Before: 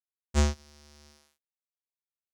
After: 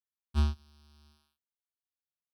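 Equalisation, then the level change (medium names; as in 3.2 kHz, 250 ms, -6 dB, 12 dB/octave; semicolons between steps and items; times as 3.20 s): high-pass 70 Hz; bass shelf 130 Hz +8.5 dB; static phaser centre 2 kHz, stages 6; -5.5 dB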